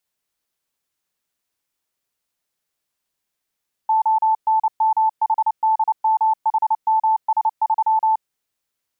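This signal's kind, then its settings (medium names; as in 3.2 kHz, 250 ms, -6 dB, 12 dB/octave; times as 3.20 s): Morse "ONMHDMHMS3" 29 wpm 879 Hz -13.5 dBFS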